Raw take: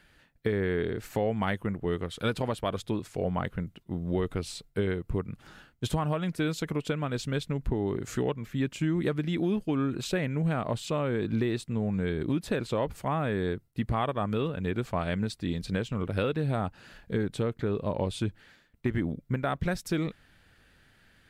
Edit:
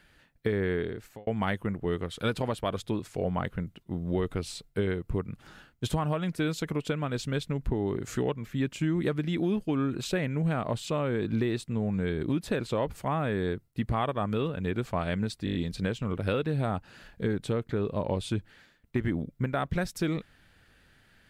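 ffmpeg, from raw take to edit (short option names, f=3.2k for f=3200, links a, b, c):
-filter_complex "[0:a]asplit=7[a][b][c][d][e][f][g];[a]atrim=end=1.27,asetpts=PTS-STARTPTS,afade=t=out:st=0.72:d=0.55[h];[b]atrim=start=1.27:end=15.472,asetpts=PTS-STARTPTS,afade=t=in:d=0.004:c=hsin[i];[c]atrim=start=15.448:end=15.472[j];[d]atrim=start=15.448:end=15.472[k];[e]atrim=start=15.448:end=15.472[l];[f]atrim=start=15.448:end=15.472[m];[g]atrim=start=15.448[n];[h][i]concat=n=2:v=0:a=1[o];[o][j]acrossfade=d=0.004:c1=hsin:c2=hsin[p];[p][k]acrossfade=d=0.004:c1=hsin:c2=hsin[q];[q][l]acrossfade=d=0.004:c1=hsin:c2=hsin[r];[r][m]acrossfade=d=0.004:c1=hsin:c2=hsin[s];[s][n]acrossfade=d=0.004:c1=hsin:c2=hsin"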